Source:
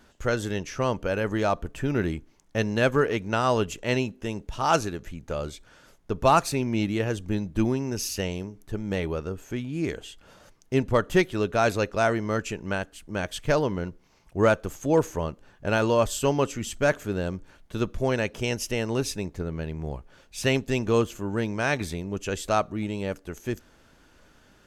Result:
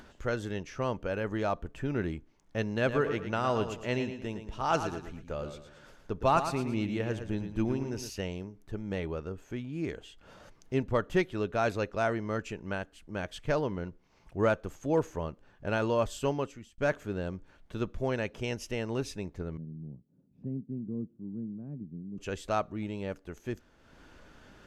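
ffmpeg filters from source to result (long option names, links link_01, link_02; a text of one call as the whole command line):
ffmpeg -i in.wav -filter_complex "[0:a]asettb=1/sr,asplit=3[link_01][link_02][link_03];[link_01]atrim=end=2.734[link_04];[link_02]atrim=start=2.73:end=8.1,asetpts=PTS-STARTPTS,afade=type=in:duration=0.004:curve=qsin,afade=type=out:start_time=5.366:duration=0.004:curve=qsin,aecho=1:1:113|226|339|452:0.355|0.128|0.046|0.0166,atrim=end_sample=236817[link_05];[link_03]atrim=start=8.096[link_06];[link_04][link_05]acrossfade=duration=0.004:curve1=hsin:curve2=qsin[link_07];[link_07][link_06]acrossfade=duration=0.004:curve1=qsin:curve2=hsin,asettb=1/sr,asplit=3[link_08][link_09][link_10];[link_08]atrim=end=19.574[link_11];[link_09]atrim=start=19.57:end=22.18,asetpts=PTS-STARTPTS,afade=type=in:duration=0.004:curve=qsin,afade=type=out:start_time=2.606:duration=0.004:curve=qsin,asuperpass=centerf=190:order=4:qfactor=1.4[link_12];[link_10]atrim=start=22.176[link_13];[link_11][link_12]acrossfade=duration=0.004:curve1=hsin:curve2=qsin[link_14];[link_14][link_13]acrossfade=duration=0.004:curve1=qsin:curve2=hsin,asplit=2[link_15][link_16];[link_15]atrim=end=16.78,asetpts=PTS-STARTPTS,afade=type=out:start_time=16.27:duration=0.51[link_17];[link_16]atrim=start=16.78,asetpts=PTS-STARTPTS,afade=type=in:duration=0.004:curve=hsin[link_18];[link_17][link_18]concat=n=2:v=0:a=1,highshelf=frequency=6300:gain=-11.5,acompressor=mode=upward:threshold=-38dB:ratio=2.5,volume=-6dB" out.wav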